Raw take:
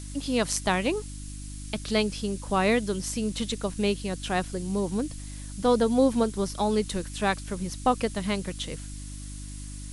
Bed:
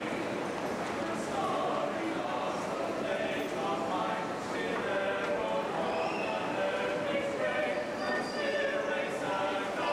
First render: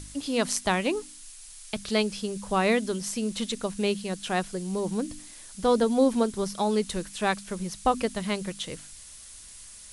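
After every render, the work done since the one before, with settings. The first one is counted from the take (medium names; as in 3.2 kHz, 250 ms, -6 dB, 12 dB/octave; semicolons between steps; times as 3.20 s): de-hum 50 Hz, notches 6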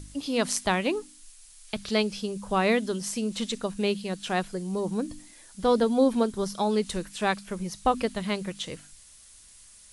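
noise print and reduce 6 dB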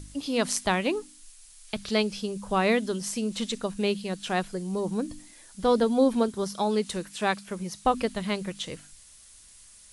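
6.28–7.86 s: high-pass 110 Hz 6 dB/octave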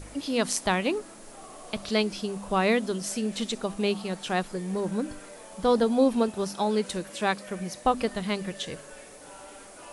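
add bed -15 dB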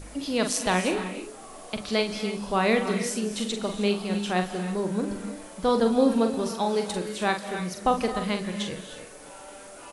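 doubling 44 ms -7 dB; gated-style reverb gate 340 ms rising, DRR 8.5 dB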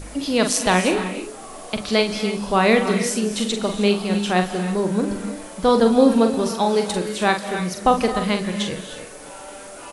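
trim +6.5 dB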